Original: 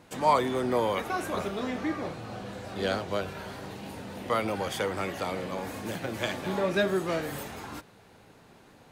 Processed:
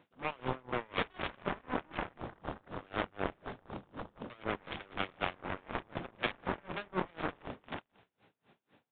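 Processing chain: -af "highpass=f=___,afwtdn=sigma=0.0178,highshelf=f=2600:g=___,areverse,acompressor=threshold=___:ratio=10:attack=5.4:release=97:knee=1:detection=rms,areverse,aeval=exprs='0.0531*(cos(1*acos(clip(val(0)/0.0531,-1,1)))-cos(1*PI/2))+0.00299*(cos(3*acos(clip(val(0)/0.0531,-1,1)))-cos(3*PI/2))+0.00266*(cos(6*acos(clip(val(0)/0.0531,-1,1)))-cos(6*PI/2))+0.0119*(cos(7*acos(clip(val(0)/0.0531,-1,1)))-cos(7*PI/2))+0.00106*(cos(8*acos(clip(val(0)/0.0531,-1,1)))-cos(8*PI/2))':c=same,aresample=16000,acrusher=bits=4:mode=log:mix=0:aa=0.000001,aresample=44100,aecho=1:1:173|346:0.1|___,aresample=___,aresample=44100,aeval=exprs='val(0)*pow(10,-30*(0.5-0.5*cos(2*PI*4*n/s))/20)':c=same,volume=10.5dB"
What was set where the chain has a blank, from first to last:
110, 7.5, -35dB, 0.03, 8000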